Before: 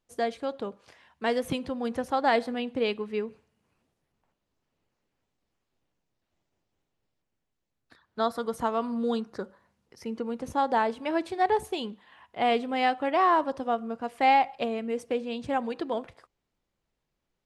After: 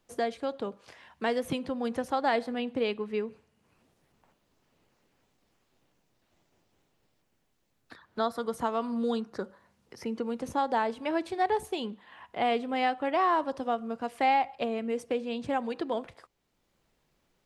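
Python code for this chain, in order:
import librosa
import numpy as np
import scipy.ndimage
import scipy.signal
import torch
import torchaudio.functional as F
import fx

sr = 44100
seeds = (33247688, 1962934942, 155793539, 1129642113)

y = fx.band_squash(x, sr, depth_pct=40)
y = y * librosa.db_to_amplitude(-2.0)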